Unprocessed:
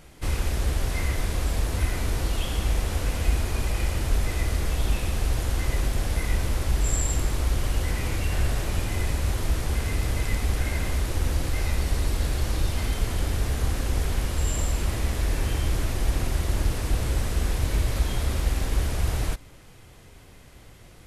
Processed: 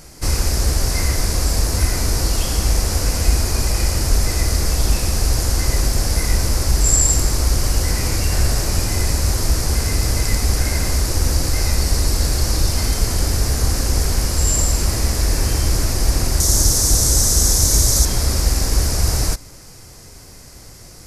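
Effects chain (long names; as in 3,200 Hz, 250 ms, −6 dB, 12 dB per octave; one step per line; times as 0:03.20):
high shelf with overshoot 4,100 Hz +6 dB, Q 3, from 0:16.40 +13.5 dB, from 0:18.05 +7 dB
level +7 dB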